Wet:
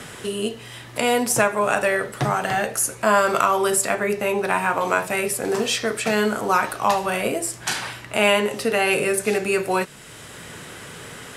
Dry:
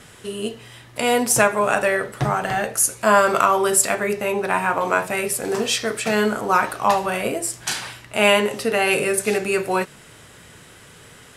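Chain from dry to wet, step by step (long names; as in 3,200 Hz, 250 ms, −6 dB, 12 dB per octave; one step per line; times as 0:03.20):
multiband upward and downward compressor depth 40%
level −1 dB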